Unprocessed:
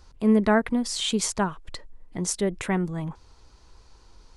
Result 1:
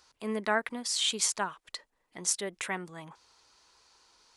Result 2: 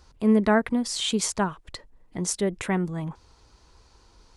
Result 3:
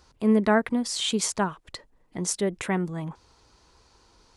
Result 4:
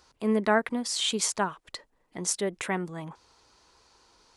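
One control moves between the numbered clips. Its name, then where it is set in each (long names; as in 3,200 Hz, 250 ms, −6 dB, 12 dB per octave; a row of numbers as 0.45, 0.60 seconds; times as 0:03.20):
high-pass filter, corner frequency: 1,400, 42, 130, 450 Hertz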